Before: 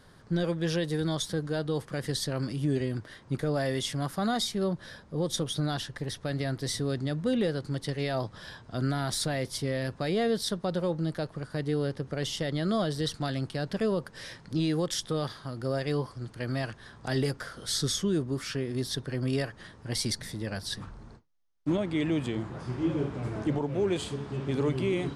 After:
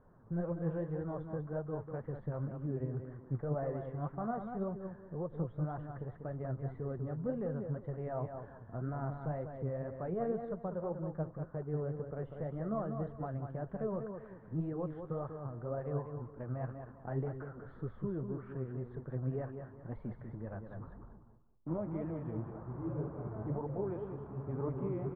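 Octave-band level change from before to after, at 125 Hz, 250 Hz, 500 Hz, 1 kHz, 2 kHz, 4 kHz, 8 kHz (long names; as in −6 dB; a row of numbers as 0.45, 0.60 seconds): −6.5 dB, −9.5 dB, −8.0 dB, −7.0 dB, −18.0 dB, below −40 dB, below −40 dB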